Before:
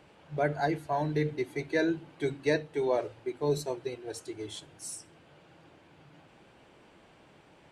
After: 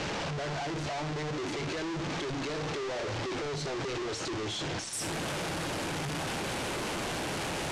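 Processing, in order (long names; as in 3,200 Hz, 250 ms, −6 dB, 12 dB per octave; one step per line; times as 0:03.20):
sign of each sample alone
low-pass filter 6,700 Hz 24 dB per octave, from 0:04.93 11,000 Hz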